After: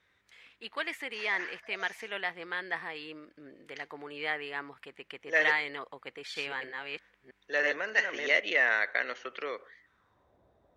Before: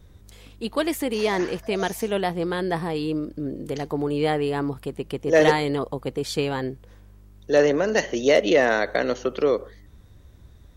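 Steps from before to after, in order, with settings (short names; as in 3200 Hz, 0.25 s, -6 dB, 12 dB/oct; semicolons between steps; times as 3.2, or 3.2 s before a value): 6.03–8.4 reverse delay 0.32 s, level -3 dB; band-pass sweep 2000 Hz -> 670 Hz, 9.77–10.36; gain +2 dB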